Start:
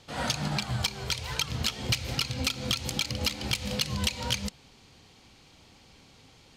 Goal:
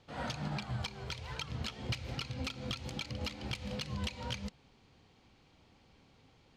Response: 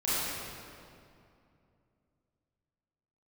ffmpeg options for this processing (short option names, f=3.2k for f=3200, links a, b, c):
-af "aemphasis=mode=reproduction:type=75kf,volume=-6.5dB"